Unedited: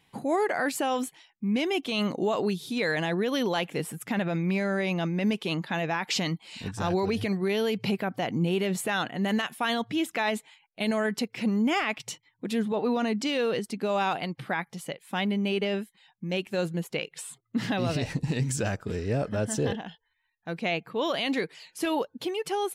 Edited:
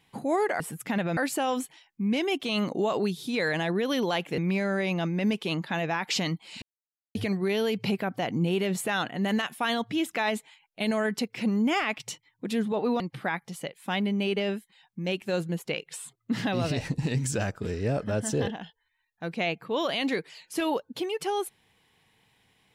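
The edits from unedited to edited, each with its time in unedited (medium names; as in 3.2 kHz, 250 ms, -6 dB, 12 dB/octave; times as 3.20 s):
3.81–4.38 s: move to 0.60 s
6.62–7.15 s: mute
13.00–14.25 s: delete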